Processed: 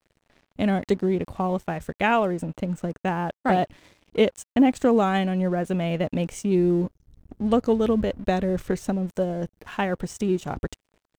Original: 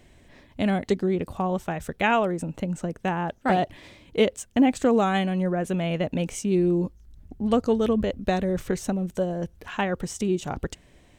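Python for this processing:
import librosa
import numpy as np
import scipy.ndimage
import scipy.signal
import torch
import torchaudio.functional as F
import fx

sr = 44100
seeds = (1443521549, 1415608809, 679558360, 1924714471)

y = fx.high_shelf(x, sr, hz=2200.0, db=-3.5)
y = np.sign(y) * np.maximum(np.abs(y) - 10.0 ** (-49.5 / 20.0), 0.0)
y = F.gain(torch.from_numpy(y), 1.5).numpy()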